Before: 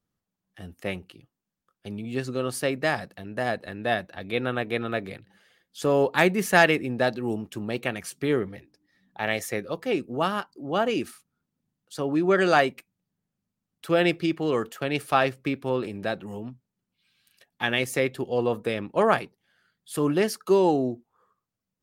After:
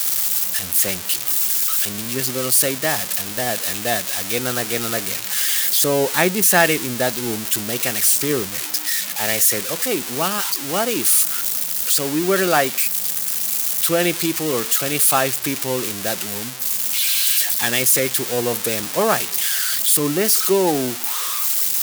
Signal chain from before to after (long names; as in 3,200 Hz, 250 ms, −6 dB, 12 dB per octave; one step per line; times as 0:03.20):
spike at every zero crossing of −12.5 dBFS
level +2.5 dB